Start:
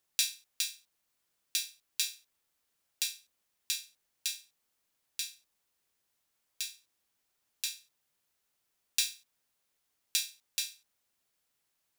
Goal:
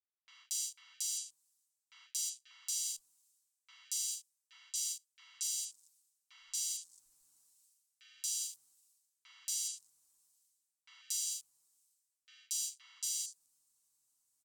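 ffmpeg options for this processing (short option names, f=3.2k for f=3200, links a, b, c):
-filter_complex "[0:a]dynaudnorm=f=120:g=17:m=10dB,bass=f=250:g=12,treble=f=4k:g=14,bandreject=f=4.1k:w=22,areverse,acompressor=threshold=-41dB:ratio=12,areverse,aecho=1:1:5.7:0.67,afwtdn=0.00141,asetrate=36603,aresample=44100,equalizer=f=250:t=o:w=1:g=8,equalizer=f=1k:t=o:w=1:g=10,equalizer=f=8k:t=o:w=1:g=11,acrossover=split=170|2400[a][b][c];[b]adelay=50[d];[c]adelay=280[e];[a][d][e]amix=inputs=3:normalize=0,volume=-3.5dB"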